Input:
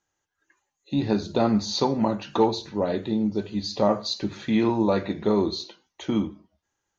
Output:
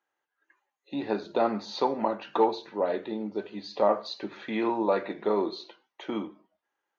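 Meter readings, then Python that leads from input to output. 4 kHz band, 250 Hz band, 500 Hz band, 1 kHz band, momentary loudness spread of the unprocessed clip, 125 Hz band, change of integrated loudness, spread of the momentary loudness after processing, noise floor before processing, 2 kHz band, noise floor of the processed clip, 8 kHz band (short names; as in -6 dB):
-9.0 dB, -8.5 dB, -2.0 dB, -0.5 dB, 7 LU, -16.0 dB, -4.5 dB, 12 LU, -81 dBFS, -1.5 dB, under -85 dBFS, n/a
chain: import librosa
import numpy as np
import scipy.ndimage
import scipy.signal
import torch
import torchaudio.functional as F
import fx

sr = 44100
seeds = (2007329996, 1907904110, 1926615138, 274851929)

y = fx.bandpass_edges(x, sr, low_hz=410.0, high_hz=2600.0)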